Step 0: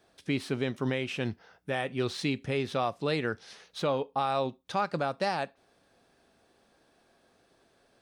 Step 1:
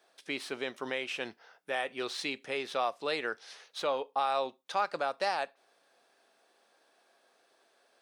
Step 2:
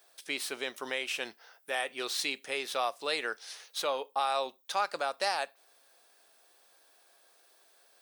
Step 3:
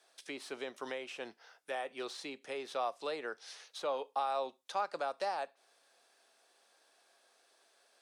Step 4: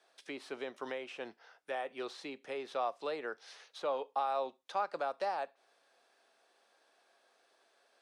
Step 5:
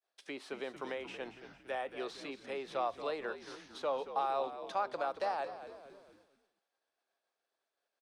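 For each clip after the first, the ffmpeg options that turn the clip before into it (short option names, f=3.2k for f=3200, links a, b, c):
-af "highpass=510"
-af "aemphasis=mode=production:type=bsi"
-filter_complex "[0:a]lowpass=8.6k,acrossover=split=230|1200[a][b][c];[c]acompressor=threshold=-43dB:ratio=6[d];[a][b][d]amix=inputs=3:normalize=0,volume=-2.5dB"
-af "highshelf=f=4.9k:g=-11.5,volume=1dB"
-filter_complex "[0:a]asplit=2[a][b];[b]asplit=5[c][d][e][f][g];[c]adelay=228,afreqshift=-70,volume=-11.5dB[h];[d]adelay=456,afreqshift=-140,volume=-17.7dB[i];[e]adelay=684,afreqshift=-210,volume=-23.9dB[j];[f]adelay=912,afreqshift=-280,volume=-30.1dB[k];[g]adelay=1140,afreqshift=-350,volume=-36.3dB[l];[h][i][j][k][l]amix=inputs=5:normalize=0[m];[a][m]amix=inputs=2:normalize=0,agate=range=-33dB:threshold=-58dB:ratio=3:detection=peak"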